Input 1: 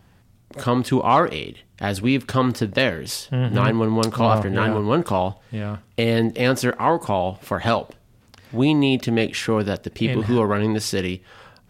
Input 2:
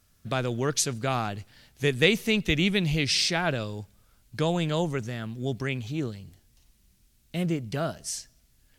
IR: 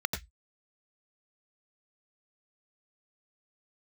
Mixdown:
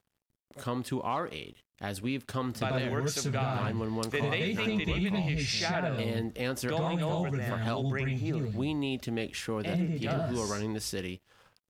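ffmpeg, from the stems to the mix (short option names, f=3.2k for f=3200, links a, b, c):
-filter_complex "[0:a]highshelf=f=7k:g=6.5,aeval=exprs='sgn(val(0))*max(abs(val(0))-0.00316,0)':c=same,volume=-12dB,asplit=2[a][b];[1:a]adelay=2300,volume=-3dB,asplit=2[c][d];[d]volume=-3.5dB[e];[b]apad=whole_len=489030[f];[c][f]sidechaincompress=threshold=-44dB:ratio=8:attack=16:release=117[g];[2:a]atrim=start_sample=2205[h];[e][h]afir=irnorm=-1:irlink=0[i];[a][g][i]amix=inputs=3:normalize=0,acompressor=threshold=-27dB:ratio=6"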